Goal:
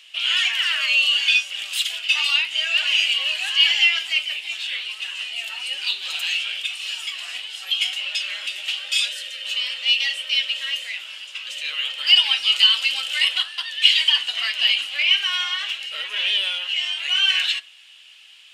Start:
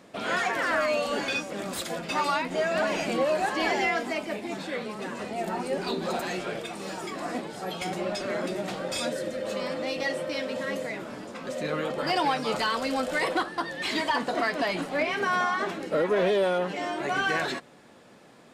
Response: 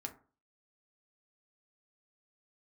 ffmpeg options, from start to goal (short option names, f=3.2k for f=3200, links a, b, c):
-filter_complex "[0:a]highpass=f=2.9k:t=q:w=10,asplit=2[a][b];[1:a]atrim=start_sample=2205[c];[b][c]afir=irnorm=-1:irlink=0,volume=0dB[d];[a][d]amix=inputs=2:normalize=0,volume=1dB"